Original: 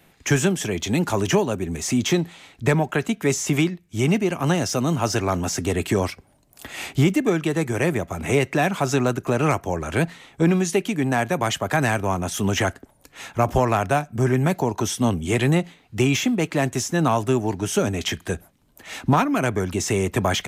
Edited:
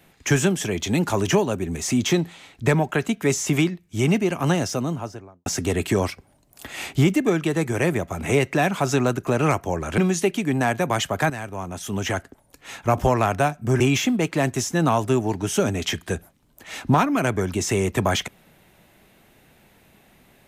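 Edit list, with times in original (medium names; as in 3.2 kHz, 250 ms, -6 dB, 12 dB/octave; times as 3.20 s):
4.48–5.46 s: studio fade out
9.98–10.49 s: delete
11.81–13.27 s: fade in, from -12.5 dB
14.31–15.99 s: delete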